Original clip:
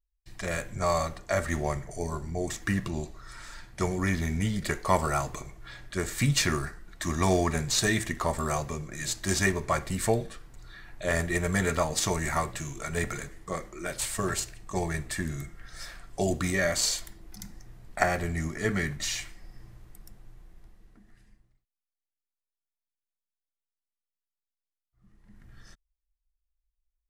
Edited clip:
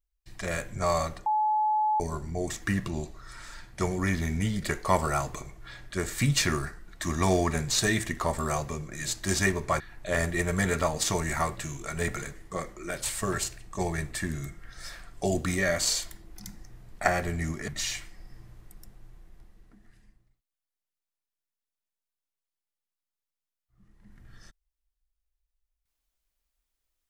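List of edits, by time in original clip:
1.26–2 bleep 856 Hz -22 dBFS
9.8–10.76 cut
18.64–18.92 cut

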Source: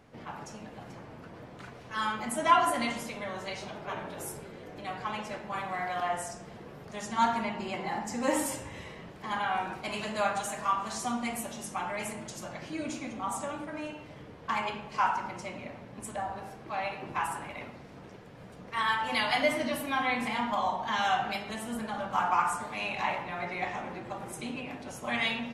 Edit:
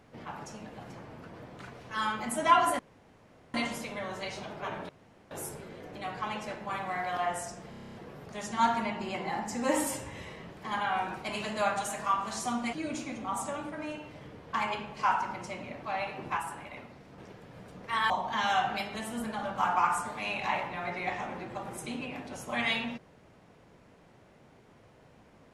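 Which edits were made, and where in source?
2.79 insert room tone 0.75 s
4.14 insert room tone 0.42 s
6.53 stutter 0.03 s, 9 plays
11.32–12.68 cut
15.78–16.67 cut
17.21–18.02 gain -3.5 dB
18.94–20.65 cut

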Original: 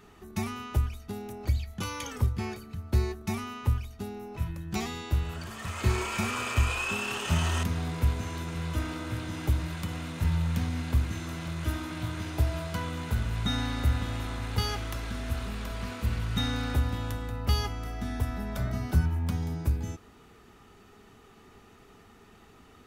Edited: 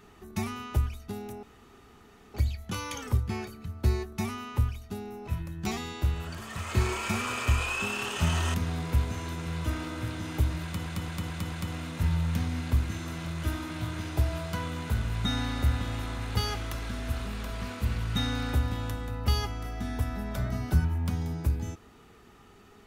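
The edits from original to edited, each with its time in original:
1.43 insert room tone 0.91 s
9.73 stutter 0.22 s, 5 plays

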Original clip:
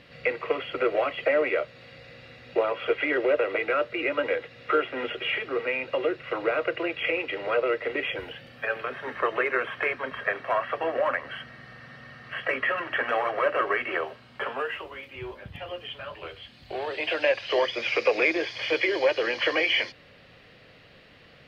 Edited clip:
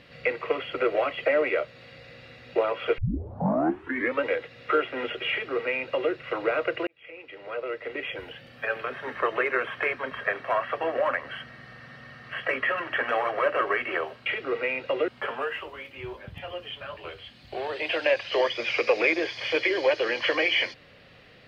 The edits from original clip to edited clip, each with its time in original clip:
2.98 tape start 1.26 s
5.3–6.12 copy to 14.26
6.87–8.72 fade in

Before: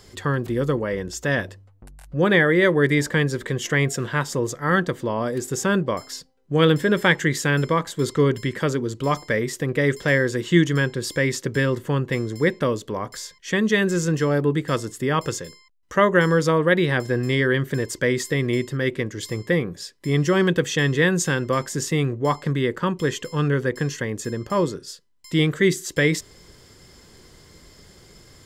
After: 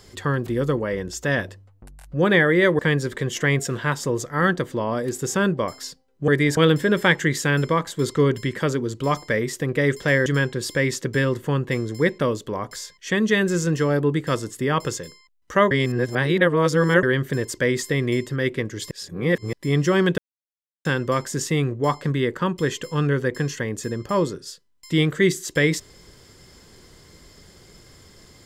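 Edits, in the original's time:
2.79–3.08 move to 6.57
10.26–10.67 cut
16.12–17.44 reverse
19.32–19.94 reverse
20.59–21.26 mute

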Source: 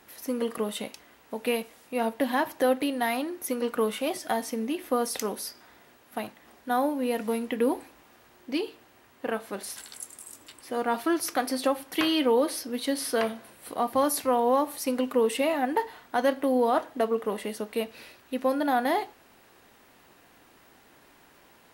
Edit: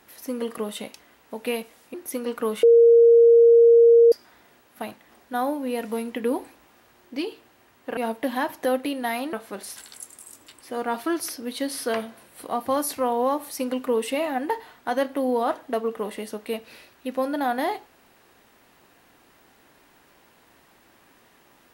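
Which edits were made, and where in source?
1.94–3.3 move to 9.33
3.99–5.48 bleep 466 Hz -10 dBFS
11.29–12.56 cut

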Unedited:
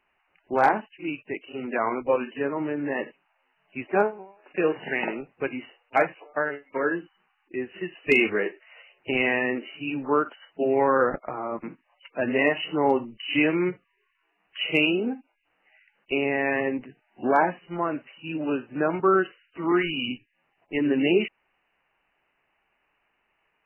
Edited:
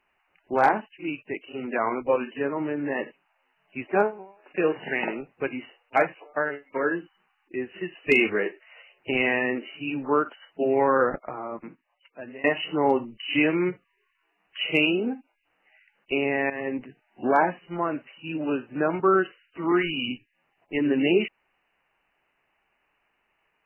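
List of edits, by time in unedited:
10.99–12.44 fade out, to -21.5 dB
16.5–16.79 fade in, from -13 dB

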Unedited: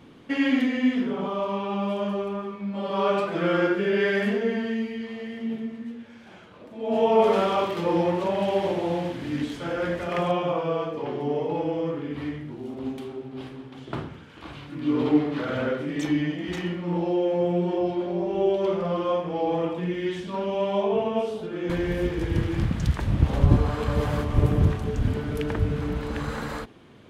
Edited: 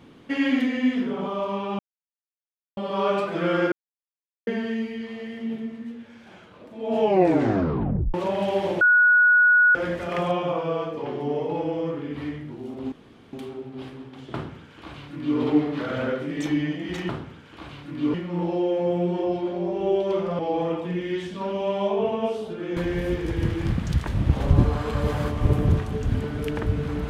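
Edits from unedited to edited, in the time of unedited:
1.79–2.77 mute
3.72–4.47 mute
7 tape stop 1.14 s
8.81–9.75 bleep 1460 Hz -13 dBFS
12.92 insert room tone 0.41 s
13.93–14.98 copy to 16.68
18.93–19.32 cut

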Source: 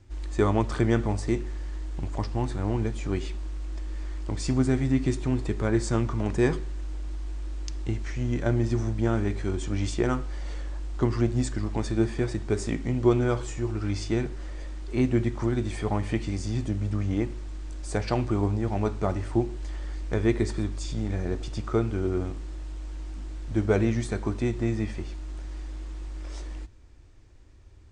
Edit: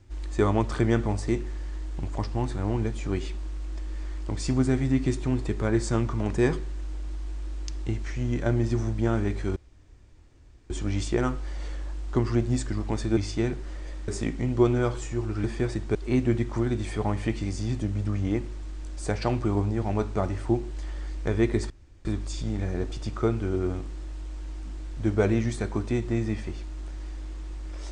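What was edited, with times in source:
9.56 insert room tone 1.14 s
12.03–12.54 swap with 13.9–14.81
20.56 insert room tone 0.35 s

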